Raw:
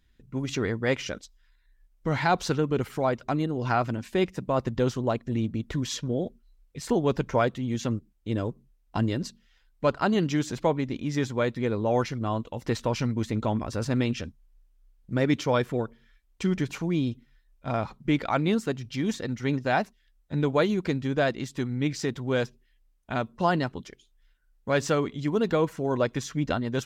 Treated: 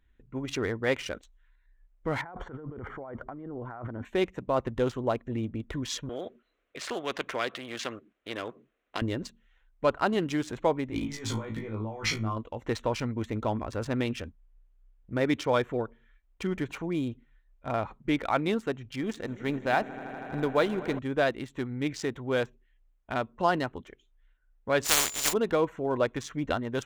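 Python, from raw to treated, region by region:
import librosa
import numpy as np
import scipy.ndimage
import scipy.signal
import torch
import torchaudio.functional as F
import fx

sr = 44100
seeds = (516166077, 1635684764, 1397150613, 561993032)

y = fx.chain(x, sr, fx.over_compress(threshold_db=-36.0, ratio=-1.0),
    fx.savgol(points=41), at=(2.21, 4.05))
y = fx.chain(y, sr, fx.bandpass_edges(low_hz=330.0, high_hz=4100.0),
    fx.peak_eq(hz=880.0, db=-12.0, octaves=0.31),
    fx.spectral_comp(ratio=2.0), at=(6.09, 9.02))
y = fx.chain(y, sr, fx.over_compress(threshold_db=-35.0, ratio=-1.0),
    fx.doubler(ms=19.0, db=-2.5),
    fx.room_flutter(wall_m=3.1, rt60_s=0.26), at=(10.9, 12.37))
y = fx.chain(y, sr, fx.law_mismatch(coded='A'),
    fx.echo_swell(ms=80, loudest=5, wet_db=-18.0), at=(19.01, 20.99))
y = fx.spec_flatten(y, sr, power=0.16, at=(24.84, 25.32), fade=0.02)
y = fx.peak_eq(y, sr, hz=6100.0, db=3.5, octaves=0.83, at=(24.84, 25.32), fade=0.02)
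y = fx.dmg_tone(y, sr, hz=7100.0, level_db=-33.0, at=(24.84, 25.32), fade=0.02)
y = fx.wiener(y, sr, points=9)
y = fx.peak_eq(y, sr, hz=160.0, db=-8.0, octaves=1.3)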